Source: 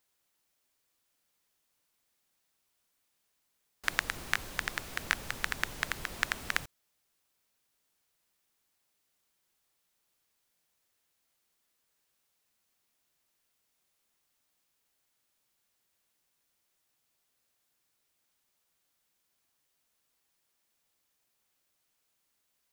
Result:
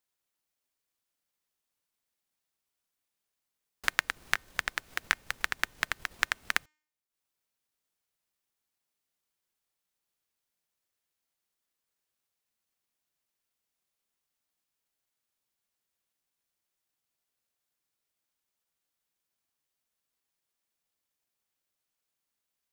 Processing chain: de-hum 305.3 Hz, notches 27; transient shaper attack +11 dB, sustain -8 dB; gain -8 dB

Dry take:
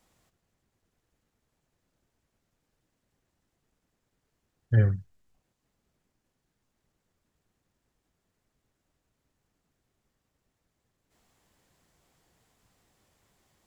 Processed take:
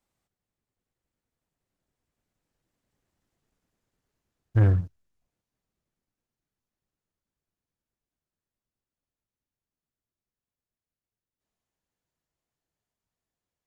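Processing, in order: Doppler pass-by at 3.37, 26 m/s, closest 27 m; sample leveller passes 2; gain +2 dB

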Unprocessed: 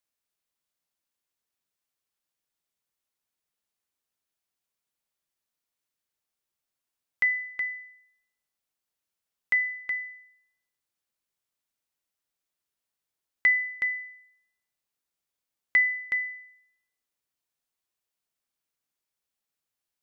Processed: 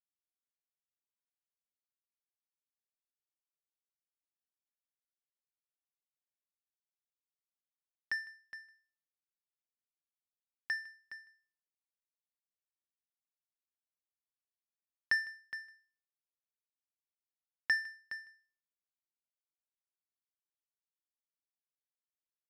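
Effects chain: echo 0.138 s -19 dB; varispeed -11%; power-law curve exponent 2; gain -6.5 dB

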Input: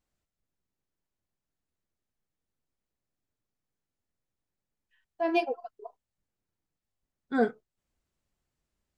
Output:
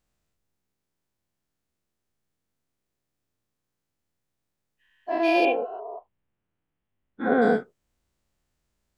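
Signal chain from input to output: spectral dilation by 0.24 s; 5.45–7.42 steep low-pass 3300 Hz 48 dB/oct

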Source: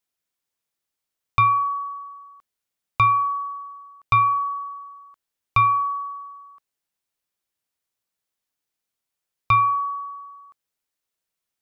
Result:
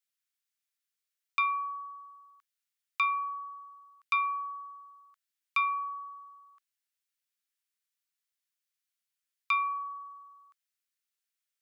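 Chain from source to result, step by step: HPF 1400 Hz 24 dB/oct; gain -4 dB

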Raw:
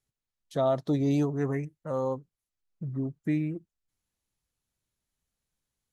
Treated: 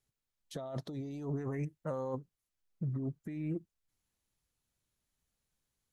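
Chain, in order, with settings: negative-ratio compressor -33 dBFS, ratio -1; gain -4.5 dB

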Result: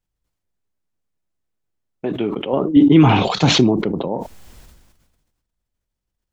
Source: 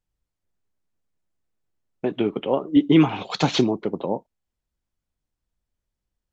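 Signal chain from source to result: 2.53–4.08 low shelf 270 Hz +8.5 dB; sustainer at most 42 dB/s

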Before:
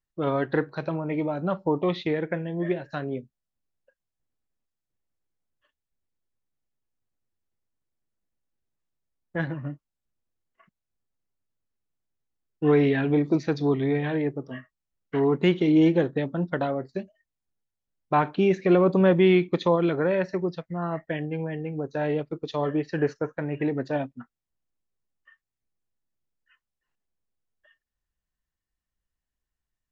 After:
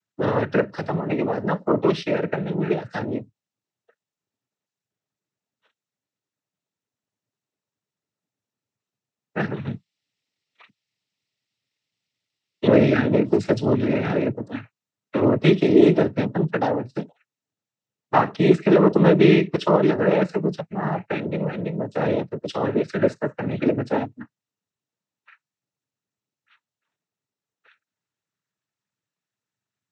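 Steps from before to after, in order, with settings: 9.56–12.67 band shelf 3400 Hz +13.5 dB; noise vocoder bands 12; gain +4.5 dB

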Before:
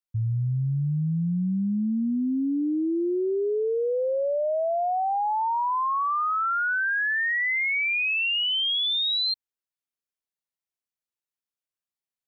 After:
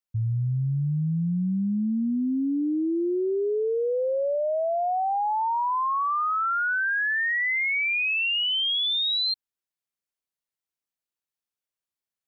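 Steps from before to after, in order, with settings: 4.35–4.86 HPF 150 Hz 6 dB/oct

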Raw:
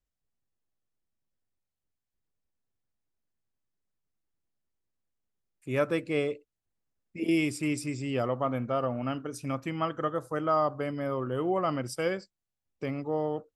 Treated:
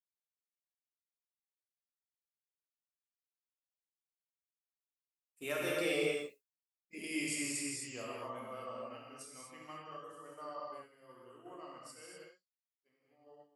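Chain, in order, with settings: Doppler pass-by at 6, 16 m/s, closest 1.7 m; compressor 6:1, threshold -44 dBFS, peak gain reduction 16 dB; RIAA curve recording; non-linear reverb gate 0.28 s flat, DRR -4.5 dB; expander -58 dBFS; gain +9 dB

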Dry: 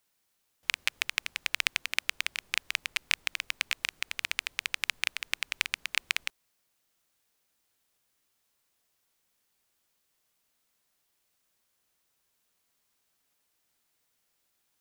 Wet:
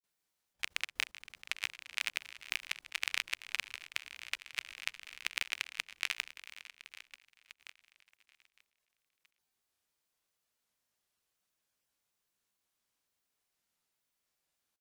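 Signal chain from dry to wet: feedback echo 0.795 s, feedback 35%, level -9.5 dB; grains 0.111 s, grains 28/s, pitch spread up and down by 0 st; level quantiser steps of 17 dB

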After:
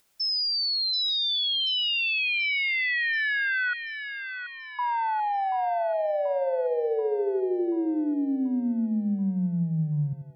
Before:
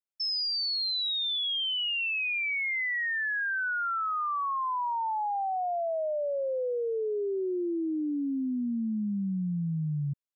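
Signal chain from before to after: upward compressor, threshold -52 dBFS; 3.73–4.79 rippled Chebyshev low-pass 840 Hz, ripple 3 dB; on a send: split-band echo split 570 Hz, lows 86 ms, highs 0.733 s, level -10 dB; on the sum: gain +3.5 dB

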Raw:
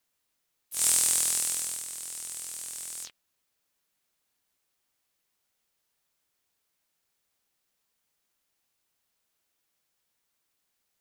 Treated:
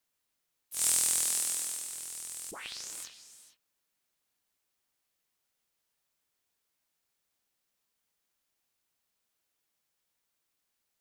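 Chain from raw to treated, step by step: 1.25–1.92 HPF 170 Hz 12 dB/oct; 2.51 tape start 0.45 s; non-linear reverb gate 0.48 s rising, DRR 12 dB; gain -3.5 dB

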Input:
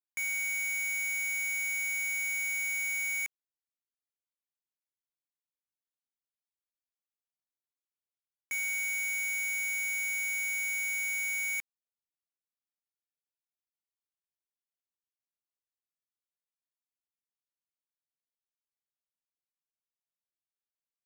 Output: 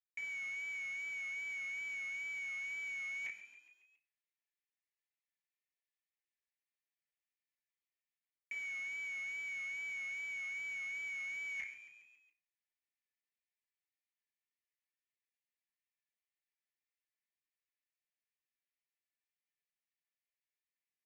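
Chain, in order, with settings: rippled Chebyshev high-pass 1700 Hz, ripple 3 dB; FDN reverb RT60 0.61 s, high-frequency decay 0.3×, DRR -2 dB; wow and flutter 38 cents; in parallel at -4 dB: bit-crush 7-bit; on the sum: frequency-shifting echo 0.138 s, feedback 58%, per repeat +58 Hz, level -21 dB; reverse; compressor 4:1, threshold -44 dBFS, peak gain reduction 12.5 dB; reverse; LPF 2300 Hz 12 dB/oct; gain +6 dB

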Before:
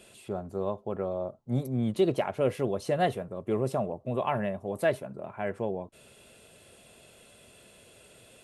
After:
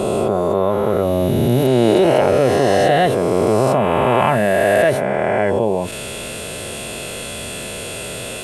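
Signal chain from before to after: spectral swells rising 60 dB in 2.94 s; fast leveller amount 50%; gain +6.5 dB

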